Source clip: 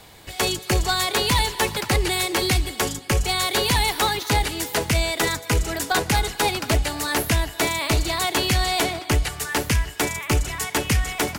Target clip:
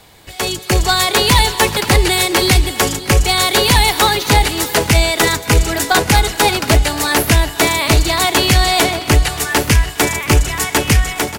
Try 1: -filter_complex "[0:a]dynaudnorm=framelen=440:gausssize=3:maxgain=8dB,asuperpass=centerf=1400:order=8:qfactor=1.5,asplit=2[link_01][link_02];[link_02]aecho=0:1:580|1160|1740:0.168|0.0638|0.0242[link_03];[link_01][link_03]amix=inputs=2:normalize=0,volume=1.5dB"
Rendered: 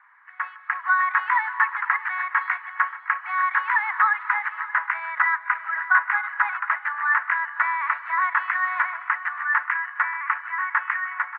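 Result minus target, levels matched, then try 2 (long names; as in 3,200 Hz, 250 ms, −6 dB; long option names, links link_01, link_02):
1,000 Hz band +4.0 dB
-filter_complex "[0:a]dynaudnorm=framelen=440:gausssize=3:maxgain=8dB,asplit=2[link_01][link_02];[link_02]aecho=0:1:580|1160|1740:0.168|0.0638|0.0242[link_03];[link_01][link_03]amix=inputs=2:normalize=0,volume=1.5dB"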